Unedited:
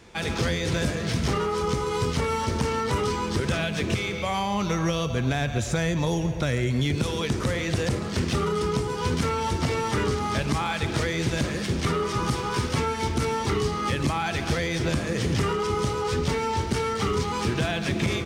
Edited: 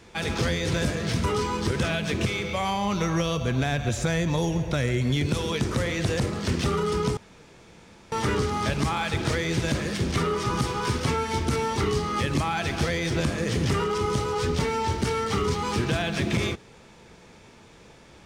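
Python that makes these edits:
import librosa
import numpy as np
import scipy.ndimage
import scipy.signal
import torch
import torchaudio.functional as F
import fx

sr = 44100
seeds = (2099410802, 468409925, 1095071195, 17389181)

y = fx.edit(x, sr, fx.cut(start_s=1.24, length_s=1.69),
    fx.room_tone_fill(start_s=8.86, length_s=0.95), tone=tone)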